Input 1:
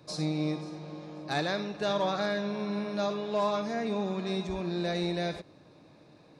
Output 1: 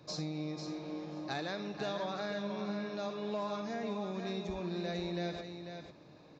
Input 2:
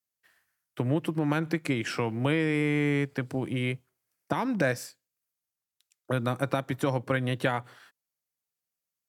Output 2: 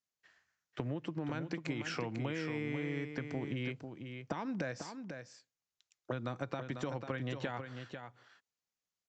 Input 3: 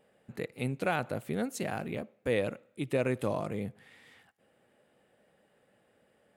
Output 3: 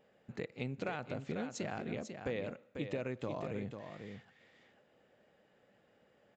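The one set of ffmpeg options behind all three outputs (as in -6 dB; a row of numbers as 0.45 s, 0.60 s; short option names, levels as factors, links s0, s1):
-filter_complex "[0:a]acompressor=threshold=0.02:ratio=5,asplit=2[s0][s1];[s1]aecho=0:1:495:0.422[s2];[s0][s2]amix=inputs=2:normalize=0,aresample=16000,aresample=44100,volume=0.841"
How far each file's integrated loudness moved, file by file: -7.0 LU, -11.0 LU, -7.5 LU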